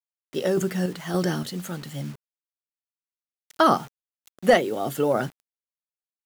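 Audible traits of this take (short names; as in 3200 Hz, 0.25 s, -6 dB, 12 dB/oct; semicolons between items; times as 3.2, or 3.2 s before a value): random-step tremolo, depth 55%; a quantiser's noise floor 8-bit, dither none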